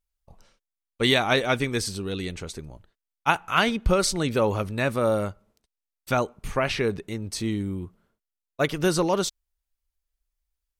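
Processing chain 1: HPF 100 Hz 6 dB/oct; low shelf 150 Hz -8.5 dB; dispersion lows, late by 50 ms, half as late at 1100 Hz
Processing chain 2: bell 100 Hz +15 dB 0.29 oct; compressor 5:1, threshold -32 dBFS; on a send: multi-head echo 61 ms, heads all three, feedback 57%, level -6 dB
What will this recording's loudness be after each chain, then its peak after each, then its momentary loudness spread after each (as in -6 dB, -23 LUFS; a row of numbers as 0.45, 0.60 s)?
-26.0, -32.0 LUFS; -8.0, -15.0 dBFS; 13, 10 LU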